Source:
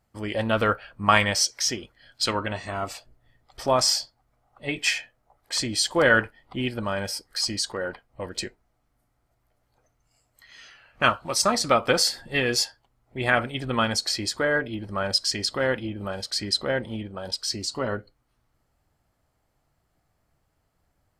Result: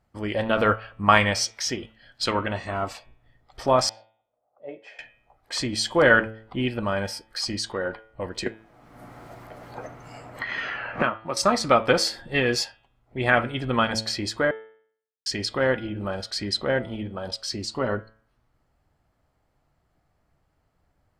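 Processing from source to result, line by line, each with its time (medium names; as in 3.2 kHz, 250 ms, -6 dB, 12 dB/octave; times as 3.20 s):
3.89–4.99 s: band-pass filter 560 Hz, Q 3.7
8.46–11.37 s: three bands compressed up and down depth 100%
14.51–15.26 s: mute
whole clip: treble shelf 5.1 kHz -11 dB; de-hum 110.4 Hz, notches 34; trim +2.5 dB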